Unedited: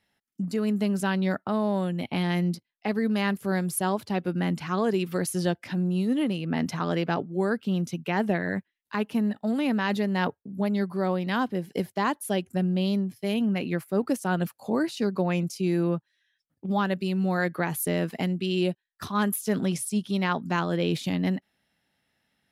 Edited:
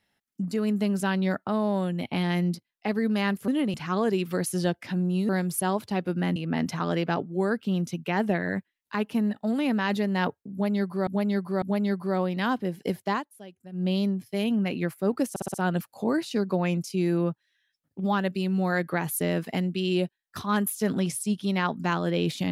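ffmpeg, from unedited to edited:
-filter_complex "[0:a]asplit=13[s0][s1][s2][s3][s4][s5][s6][s7][s8][s9][s10][s11][s12];[s0]atrim=end=3.482[s13];[s1]atrim=start=6.098:end=6.362[s14];[s2]atrim=start=4.548:end=6.102[s15];[s3]atrim=start=3.478:end=4.552[s16];[s4]atrim=start=6.358:end=11.072[s17];[s5]atrim=start=10.518:end=11.072[s18];[s6]atrim=start=10.518:end=12.15,asetpts=PTS-STARTPTS,afade=t=out:st=1.502:d=0.13:silence=0.125893[s19];[s7]atrim=start=12.15:end=12.62,asetpts=PTS-STARTPTS,volume=0.126[s20];[s8]atrim=start=12.62:end=14.262,asetpts=PTS-STARTPTS,afade=t=in:d=0.13:silence=0.125893[s21];[s9]atrim=start=14.198:end=14.262[s22];[s10]atrim=start=14.198:end=14.262[s23];[s11]atrim=start=14.198:end=14.262[s24];[s12]atrim=start=14.198[s25];[s13][s14]acrossfade=d=0.004:c1=hsin:c2=hsin[s26];[s26][s15]acrossfade=d=0.004:c1=hsin:c2=hsin[s27];[s27][s16]acrossfade=d=0.004:c1=hsin:c2=hsin[s28];[s28][s17]acrossfade=d=0.004:c1=hsin:c2=hsin[s29];[s29][s18]acrossfade=d=0.004:c1=hsin:c2=hsin[s30];[s19][s20][s21]concat=n=3:v=0:a=1[s31];[s30][s31]acrossfade=d=0.004:c1=hsin:c2=hsin[s32];[s32][s22]acrossfade=d=0.004:c1=hsin:c2=hsin[s33];[s33][s23]acrossfade=d=0.004:c1=hsin:c2=hsin[s34];[s34][s24]acrossfade=d=0.004:c1=hsin:c2=hsin[s35];[s35][s25]acrossfade=d=0.004:c1=hsin:c2=hsin"

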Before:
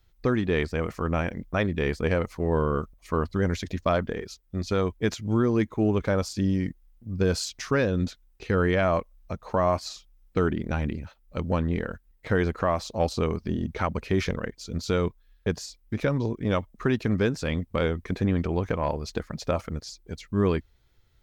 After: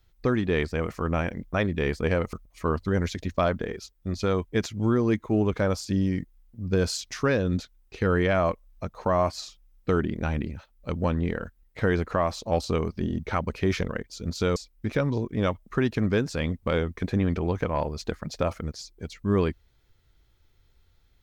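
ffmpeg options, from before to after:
-filter_complex "[0:a]asplit=3[s0][s1][s2];[s0]atrim=end=2.332[s3];[s1]atrim=start=2.808:end=15.042[s4];[s2]atrim=start=15.638[s5];[s3][s4]acrossfade=d=0.004:c1=hsin:c2=hsin[s6];[s6][s5]acrossfade=d=0.004:c1=hsin:c2=hsin"

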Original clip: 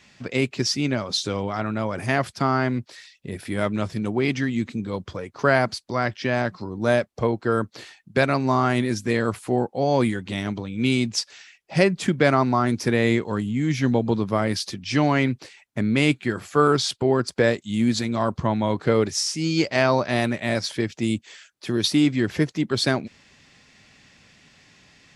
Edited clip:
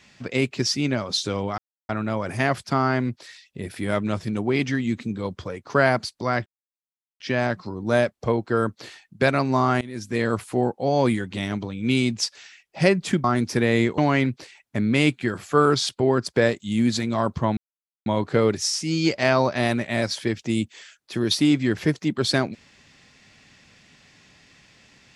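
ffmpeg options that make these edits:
-filter_complex "[0:a]asplit=7[s0][s1][s2][s3][s4][s5][s6];[s0]atrim=end=1.58,asetpts=PTS-STARTPTS,afade=t=out:st=1.576:d=0.004:c=hsin,apad=pad_dur=0.31[s7];[s1]atrim=start=1.58:end=6.15,asetpts=PTS-STARTPTS,afade=t=in:d=0.004:c=hsin,afade=t=out:st=4.566:d=0.004:c=hsin,apad=pad_dur=0.74[s8];[s2]atrim=start=6.15:end=8.76,asetpts=PTS-STARTPTS,afade=t=in:d=0.004:c=hsin,afade=t=out:st=2.606:d=0.004:c=hsin:silence=0.0794328[s9];[s3]atrim=start=8.76:end=12.192,asetpts=PTS-STARTPTS,afade=t=in:d=0.46:silence=0.0794328[s10];[s4]atrim=start=12.548:end=13.292[s11];[s5]atrim=start=14.998:end=18.59,asetpts=PTS-STARTPTS,afade=t=out:st=3.588:d=0.004:c=hsin,apad=pad_dur=0.49[s12];[s6]atrim=start=18.59,asetpts=PTS-STARTPTS,afade=t=in:d=0.004:c=hsin[s13];[s7][s8][s9][s10]concat=n=4:v=0:a=1[s14];[s14][s11]acrossfade=d=0.004:c1=hsin:c2=hsin[s15];[s12][s13]concat=n=2:v=0:a=1[s16];[s15][s16]acrossfade=d=0.004:c1=hsin:c2=hsin"

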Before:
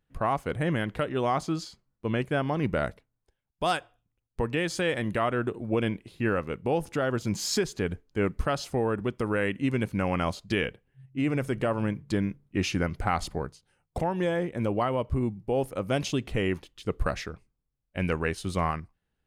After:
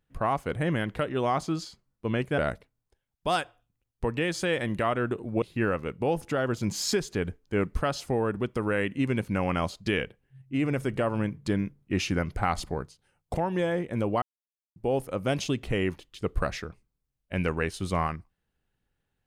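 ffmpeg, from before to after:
-filter_complex "[0:a]asplit=5[s0][s1][s2][s3][s4];[s0]atrim=end=2.382[s5];[s1]atrim=start=2.738:end=5.782[s6];[s2]atrim=start=6.058:end=14.86,asetpts=PTS-STARTPTS,afade=t=out:st=8.798:d=0.004:c=hsin[s7];[s3]atrim=start=14.86:end=15.4,asetpts=PTS-STARTPTS,volume=0[s8];[s4]atrim=start=15.4,asetpts=PTS-STARTPTS,afade=t=in:d=0.004:c=hsin[s9];[s5][s6]acrossfade=d=0.004:c1=hsin:c2=hsin[s10];[s7][s8][s9]concat=n=3:v=0:a=1[s11];[s10][s11]acrossfade=d=0.004:c1=hsin:c2=hsin"

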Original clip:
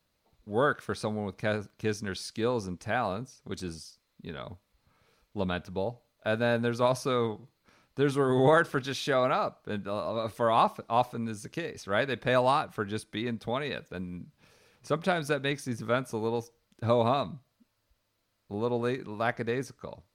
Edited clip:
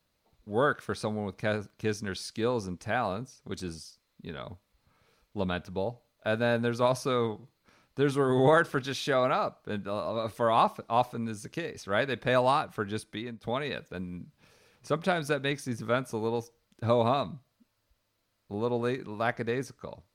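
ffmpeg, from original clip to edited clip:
-filter_complex "[0:a]asplit=2[s0][s1];[s0]atrim=end=13.43,asetpts=PTS-STARTPTS,afade=t=out:st=13.1:d=0.33:c=qua:silence=0.334965[s2];[s1]atrim=start=13.43,asetpts=PTS-STARTPTS,afade=t=in:d=0.004:c=hsin:silence=0.334965[s3];[s2][s3]concat=n=2:v=0:a=1"

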